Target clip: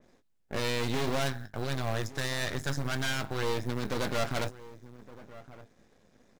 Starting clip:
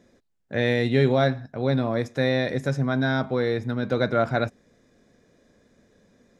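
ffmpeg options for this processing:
ffmpeg -i in.wav -filter_complex "[0:a]asettb=1/sr,asplit=3[link_01][link_02][link_03];[link_01]atrim=end=1.194[link_04];[link_02]atrim=start=1.19:end=3.43,asetpts=PTS-STARTPTS,afade=type=in:duration=0.004:curve=qsin,afade=type=out:start_time=2.236:duration=0.004:curve=qsin,equalizer=frequency=100:width_type=o:width=0.33:gain=7,equalizer=frequency=250:width_type=o:width=0.33:gain=-11,equalizer=frequency=500:width_type=o:width=0.33:gain=-10,equalizer=frequency=1600:width_type=o:width=0.33:gain=6,equalizer=frequency=2500:width_type=o:width=0.33:gain=-12[link_05];[link_03]atrim=start=3.426[link_06];[link_04][link_05]acrossfade=duration=0.004:curve1=hsin:curve2=qsin[link_07];[link_07][link_06]acrossfade=duration=0.004:curve1=qsin:curve2=hsin,asoftclip=type=hard:threshold=-23dB,asplit=2[link_08][link_09];[link_09]adelay=19,volume=-9dB[link_10];[link_08][link_10]amix=inputs=2:normalize=0,asplit=2[link_11][link_12];[link_12]adelay=1166,volume=-17dB,highshelf=frequency=4000:gain=-26.2[link_13];[link_11][link_13]amix=inputs=2:normalize=0,aeval=exprs='max(val(0),0)':channel_layout=same,acrusher=bits=8:mode=log:mix=0:aa=0.000001,adynamicequalizer=threshold=0.00251:dfrequency=3000:dqfactor=0.7:tfrequency=3000:tqfactor=0.7:attack=5:release=100:ratio=0.375:range=3:mode=boostabove:tftype=highshelf" out.wav

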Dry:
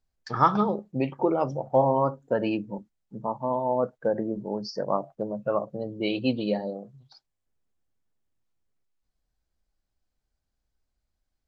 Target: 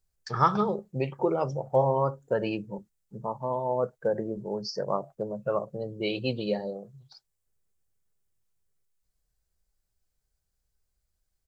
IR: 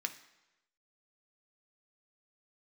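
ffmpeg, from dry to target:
-af "firequalizer=gain_entry='entry(160,0);entry(270,-11);entry(390,0);entry(690,-5);entry(1400,-2);entry(3300,-2);entry(8200,7)':delay=0.05:min_phase=1,volume=1dB"

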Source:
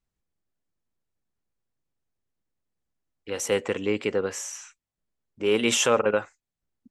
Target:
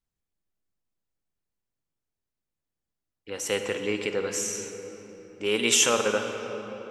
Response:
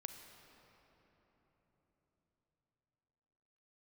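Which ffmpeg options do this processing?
-filter_complex "[0:a]asetnsamples=nb_out_samples=441:pad=0,asendcmd='3.46 highshelf g 10',highshelf=frequency=2400:gain=2[link_01];[1:a]atrim=start_sample=2205[link_02];[link_01][link_02]afir=irnorm=-1:irlink=0"

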